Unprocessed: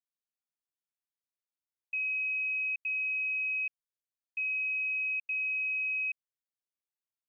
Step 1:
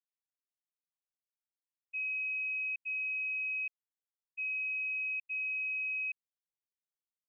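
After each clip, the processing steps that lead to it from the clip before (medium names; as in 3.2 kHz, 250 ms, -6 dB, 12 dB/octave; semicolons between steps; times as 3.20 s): expander -28 dBFS; trim +1.5 dB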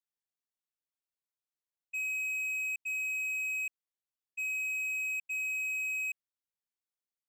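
waveshaping leveller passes 2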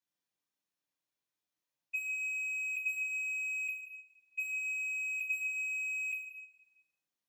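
reverberation RT60 1.1 s, pre-delay 3 ms, DRR -6.5 dB; trim -6 dB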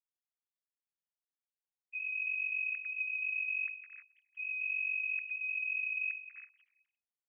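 formants replaced by sine waves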